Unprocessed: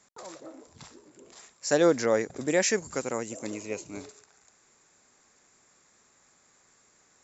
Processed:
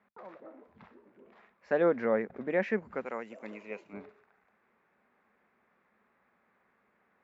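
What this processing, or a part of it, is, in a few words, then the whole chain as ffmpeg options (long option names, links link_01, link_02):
bass cabinet: -filter_complex "[0:a]asettb=1/sr,asplit=3[link_01][link_02][link_03];[link_01]atrim=end=3.054[link_04];[link_02]atrim=start=3.05:end=3.93,asetpts=PTS-STARTPTS,afade=type=in:duration=0.004:curve=qsin,afade=type=out:start_time=0.876:duration=0.004:curve=qsin,aemphasis=mode=production:type=riaa[link_05];[link_03]atrim=start=3.926[link_06];[link_04][link_05]acrossfade=duration=0.004:curve1=hsin:curve2=qsin[link_07];[link_07][link_06]acrossfade=duration=0.004:curve1=qsin:curve2=hsin,highpass=67,equalizer=frequency=95:width_type=q:width=4:gain=-9,equalizer=frequency=140:width_type=q:width=4:gain=-9,equalizer=frequency=210:width_type=q:width=4:gain=7,equalizer=frequency=300:width_type=q:width=4:gain=-6,lowpass=frequency=2300:width=0.5412,lowpass=frequency=2300:width=1.3066,volume=-3.5dB"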